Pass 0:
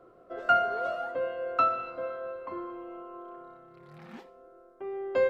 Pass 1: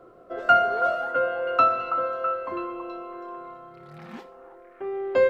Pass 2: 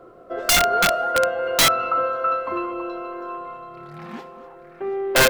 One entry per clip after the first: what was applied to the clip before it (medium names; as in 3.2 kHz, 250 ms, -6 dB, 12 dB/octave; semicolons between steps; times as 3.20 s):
repeats whose band climbs or falls 327 ms, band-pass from 990 Hz, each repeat 0.7 oct, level -6 dB; trim +5.5 dB
multi-head delay 243 ms, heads first and third, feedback 43%, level -16.5 dB; integer overflow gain 15 dB; trim +4.5 dB